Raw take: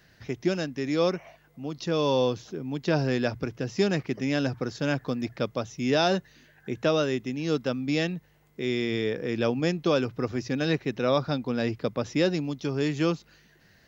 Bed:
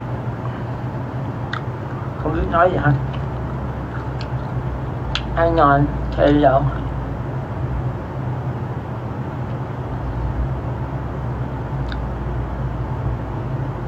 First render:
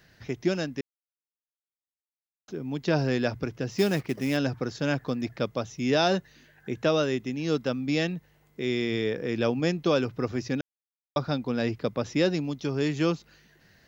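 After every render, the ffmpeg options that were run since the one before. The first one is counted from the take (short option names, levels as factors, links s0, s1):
-filter_complex "[0:a]asplit=3[s0][s1][s2];[s0]afade=t=out:st=3.7:d=0.02[s3];[s1]acrusher=bits=5:mode=log:mix=0:aa=0.000001,afade=t=in:st=3.7:d=0.02,afade=t=out:st=4.36:d=0.02[s4];[s2]afade=t=in:st=4.36:d=0.02[s5];[s3][s4][s5]amix=inputs=3:normalize=0,asplit=5[s6][s7][s8][s9][s10];[s6]atrim=end=0.81,asetpts=PTS-STARTPTS,afade=t=out:st=0.806:d=0.004:c=hsin[s11];[s7]atrim=start=0.81:end=2.48,asetpts=PTS-STARTPTS,volume=0[s12];[s8]atrim=start=2.48:end=10.61,asetpts=PTS-STARTPTS,afade=t=in:d=0.004:c=hsin,afade=t=out:st=8.126:d=0.004:c=hsin[s13];[s9]atrim=start=10.61:end=11.16,asetpts=PTS-STARTPTS,volume=0[s14];[s10]atrim=start=11.16,asetpts=PTS-STARTPTS,afade=t=in:d=0.004:c=hsin[s15];[s11][s12][s13][s14][s15]concat=n=5:v=0:a=1"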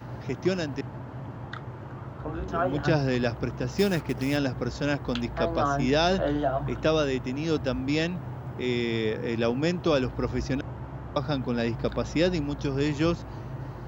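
-filter_complex "[1:a]volume=0.224[s0];[0:a][s0]amix=inputs=2:normalize=0"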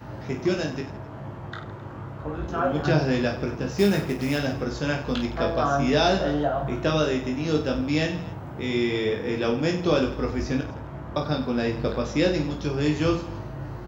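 -filter_complex "[0:a]asplit=2[s0][s1];[s1]adelay=39,volume=0.224[s2];[s0][s2]amix=inputs=2:normalize=0,aecho=1:1:20|50|95|162.5|263.8:0.631|0.398|0.251|0.158|0.1"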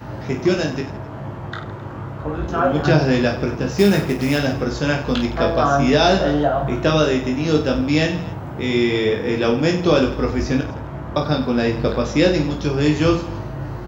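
-af "volume=2.11,alimiter=limit=0.708:level=0:latency=1"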